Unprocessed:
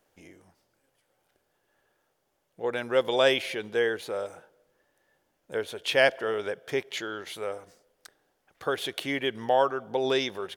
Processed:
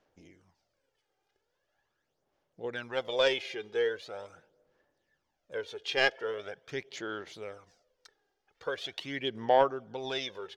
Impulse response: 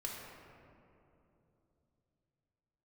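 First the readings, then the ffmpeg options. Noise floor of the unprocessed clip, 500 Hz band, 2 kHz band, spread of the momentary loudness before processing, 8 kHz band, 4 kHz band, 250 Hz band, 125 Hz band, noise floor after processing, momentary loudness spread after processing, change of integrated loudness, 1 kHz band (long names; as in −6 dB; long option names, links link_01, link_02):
−75 dBFS, −5.0 dB, −4.5 dB, 13 LU, −7.5 dB, −3.5 dB, −7.0 dB, −5.0 dB, −81 dBFS, 15 LU, −4.5 dB, −2.5 dB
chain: -af "aeval=exprs='0.447*(cos(1*acos(clip(val(0)/0.447,-1,1)))-cos(1*PI/2))+0.0631*(cos(3*acos(clip(val(0)/0.447,-1,1)))-cos(3*PI/2))':channel_layout=same,aphaser=in_gain=1:out_gain=1:delay=2.5:decay=0.56:speed=0.42:type=sinusoidal,highshelf=frequency=7800:width_type=q:width=1.5:gain=-12,volume=-4dB"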